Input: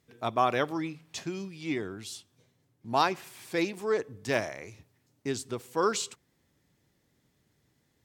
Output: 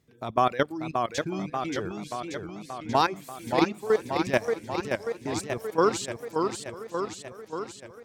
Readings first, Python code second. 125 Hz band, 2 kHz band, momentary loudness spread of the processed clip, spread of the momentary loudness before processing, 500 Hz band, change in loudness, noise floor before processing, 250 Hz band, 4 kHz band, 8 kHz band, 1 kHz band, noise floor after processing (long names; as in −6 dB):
+4.5 dB, +2.5 dB, 12 LU, 14 LU, +5.0 dB, +2.5 dB, −73 dBFS, +4.5 dB, +2.0 dB, +1.0 dB, +4.0 dB, −50 dBFS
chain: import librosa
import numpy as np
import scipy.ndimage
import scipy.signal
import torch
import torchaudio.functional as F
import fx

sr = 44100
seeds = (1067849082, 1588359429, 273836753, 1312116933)

p1 = fx.level_steps(x, sr, step_db=13)
p2 = fx.low_shelf(p1, sr, hz=430.0, db=5.0)
p3 = fx.dereverb_blind(p2, sr, rt60_s=1.3)
p4 = p3 + fx.echo_single(p3, sr, ms=946, db=-21.5, dry=0)
p5 = fx.echo_warbled(p4, sr, ms=582, feedback_pct=66, rate_hz=2.8, cents=142, wet_db=-5)
y = p5 * 10.0 ** (5.0 / 20.0)